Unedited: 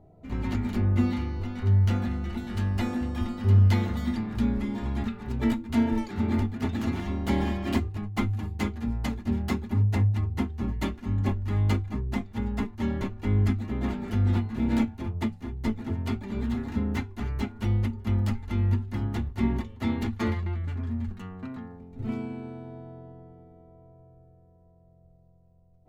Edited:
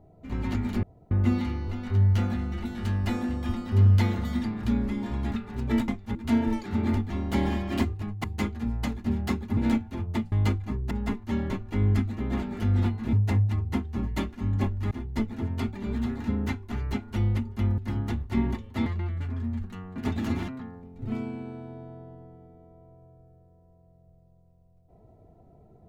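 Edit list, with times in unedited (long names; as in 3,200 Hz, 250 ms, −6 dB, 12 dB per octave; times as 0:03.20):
0:00.83: splice in room tone 0.28 s
0:06.55–0:07.05: move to 0:21.45
0:08.19–0:08.45: remove
0:09.78–0:11.56: swap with 0:14.64–0:15.39
0:12.15–0:12.42: move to 0:05.60
0:18.26–0:18.84: remove
0:19.92–0:20.33: remove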